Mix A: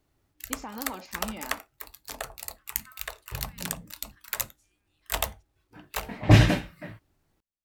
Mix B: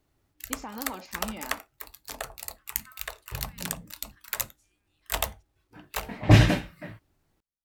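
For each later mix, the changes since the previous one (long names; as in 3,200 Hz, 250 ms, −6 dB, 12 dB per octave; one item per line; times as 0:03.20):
nothing changed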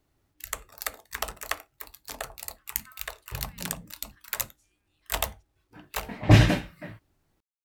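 first voice: muted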